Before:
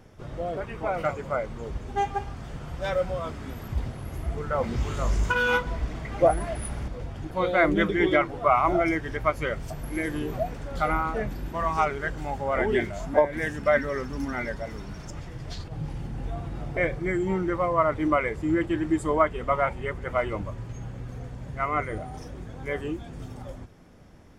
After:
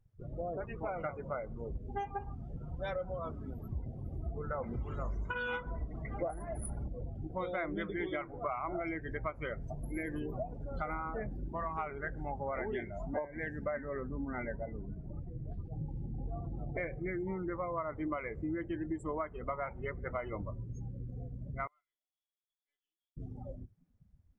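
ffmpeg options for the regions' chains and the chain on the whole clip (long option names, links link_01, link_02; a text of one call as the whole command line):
ffmpeg -i in.wav -filter_complex "[0:a]asettb=1/sr,asplit=3[link_01][link_02][link_03];[link_01]atrim=end=13.654[link_04];[link_02]atrim=start=13.65:end=15.65,asetpts=PTS-STARTPTS,afade=type=in:duration=0.004:curve=qsin,afade=type=out:start_time=1.996:duration=0.004:curve=qsin,lowpass=2700,aemphasis=mode=reproduction:type=75fm[link_05];[link_03]atrim=start=15.646[link_06];[link_04][link_05]acrossfade=duration=0.004:curve1=hsin:curve2=qsin[link_07];[link_07][link_06]acrossfade=duration=0.004:curve1=qsin:curve2=hsin,asettb=1/sr,asplit=3[link_08][link_09][link_10];[link_08]atrim=end=21.674[link_11];[link_09]atrim=start=21.67:end=23.17,asetpts=PTS-STARTPTS,afade=type=in:duration=0.004:curve=qsin,afade=type=out:start_time=1.496:duration=0.004:curve=qsin,bandpass=frequency=3400:width_type=q:width=16,aecho=1:1:3:0.82,atrim=end_sample=66150,aeval=exprs='(tanh(355*val(0)+0.5)-tanh(0.5))/355':channel_layout=same[link_12];[link_10]atrim=start=23.166[link_13];[link_11][link_12]acrossfade=duration=0.004:curve1=hsin:curve2=qsin[link_14];[link_14][link_13]acrossfade=duration=0.004:curve1=qsin:curve2=hsin,afftdn=noise_reduction=29:noise_floor=-37,acompressor=threshold=-29dB:ratio=6,volume=-5dB" out.wav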